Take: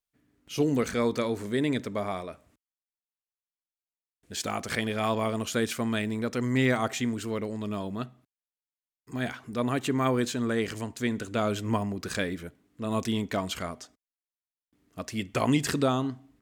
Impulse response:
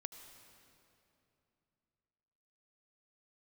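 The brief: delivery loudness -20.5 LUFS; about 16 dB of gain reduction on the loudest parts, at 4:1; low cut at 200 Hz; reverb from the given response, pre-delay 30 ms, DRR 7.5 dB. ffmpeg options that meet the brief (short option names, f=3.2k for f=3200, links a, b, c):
-filter_complex "[0:a]highpass=200,acompressor=threshold=-41dB:ratio=4,asplit=2[a][b];[1:a]atrim=start_sample=2205,adelay=30[c];[b][c]afir=irnorm=-1:irlink=0,volume=-4dB[d];[a][d]amix=inputs=2:normalize=0,volume=22dB"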